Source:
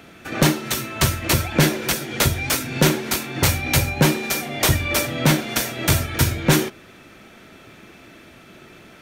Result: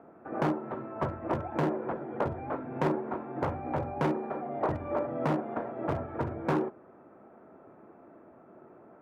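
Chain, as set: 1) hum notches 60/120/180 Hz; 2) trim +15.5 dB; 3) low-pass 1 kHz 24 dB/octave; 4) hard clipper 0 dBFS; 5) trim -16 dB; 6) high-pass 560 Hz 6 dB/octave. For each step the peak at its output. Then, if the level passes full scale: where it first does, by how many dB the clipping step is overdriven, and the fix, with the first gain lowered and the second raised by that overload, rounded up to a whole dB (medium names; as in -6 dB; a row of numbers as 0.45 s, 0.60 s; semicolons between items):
-4.5 dBFS, +11.0 dBFS, +9.5 dBFS, 0.0 dBFS, -16.0 dBFS, -13.0 dBFS; step 2, 9.5 dB; step 2 +5.5 dB, step 5 -6 dB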